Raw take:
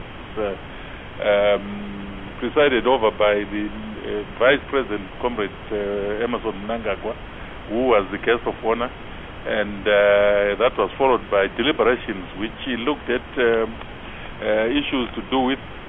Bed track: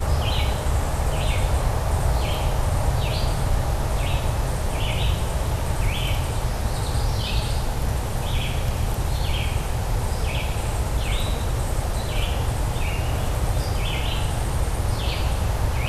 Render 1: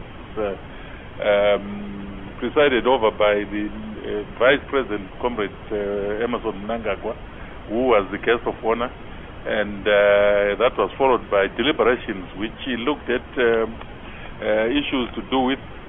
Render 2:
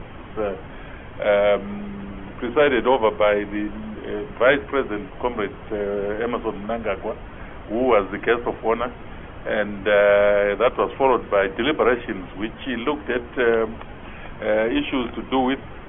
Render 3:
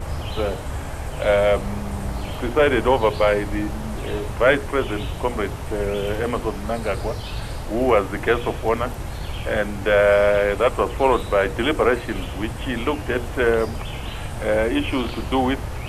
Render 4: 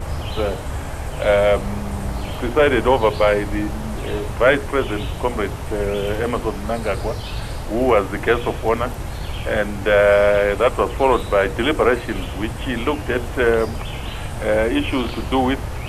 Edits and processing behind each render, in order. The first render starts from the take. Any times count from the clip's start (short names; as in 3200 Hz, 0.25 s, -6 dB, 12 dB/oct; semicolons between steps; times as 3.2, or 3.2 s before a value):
denoiser 6 dB, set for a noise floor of -36 dBFS
tone controls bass 0 dB, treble -14 dB; notches 60/120/180/240/300/360/420/480 Hz
add bed track -7 dB
gain +2 dB; limiter -3 dBFS, peak gain reduction 1.5 dB